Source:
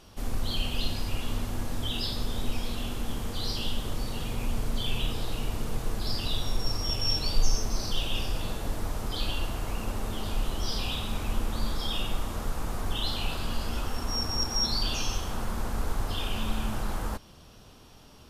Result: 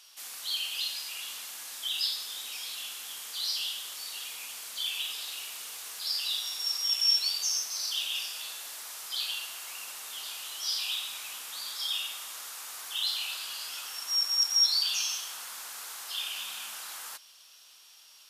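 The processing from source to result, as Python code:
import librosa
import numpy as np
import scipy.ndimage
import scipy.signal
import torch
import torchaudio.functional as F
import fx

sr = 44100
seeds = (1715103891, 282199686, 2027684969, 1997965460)

y = scipy.signal.sosfilt(scipy.signal.bessel(2, 1800.0, 'highpass', norm='mag', fs=sr, output='sos'), x)
y = fx.high_shelf(y, sr, hz=2400.0, db=10.0)
y = fx.echo_crushed(y, sr, ms=92, feedback_pct=80, bits=9, wet_db=-14.5, at=(4.65, 7.03))
y = F.gain(torch.from_numpy(y), -3.0).numpy()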